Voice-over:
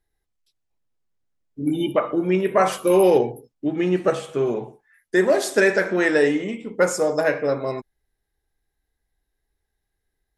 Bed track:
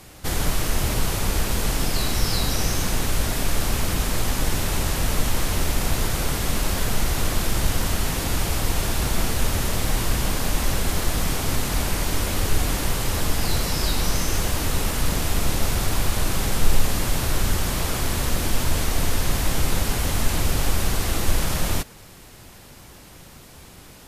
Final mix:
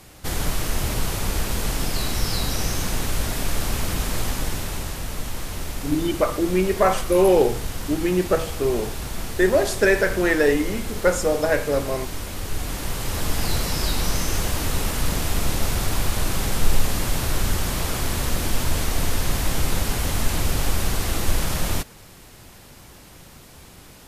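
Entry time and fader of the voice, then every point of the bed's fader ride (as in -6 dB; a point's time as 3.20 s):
4.25 s, -0.5 dB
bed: 4.24 s -1.5 dB
5.05 s -7.5 dB
12.40 s -7.5 dB
13.39 s -0.5 dB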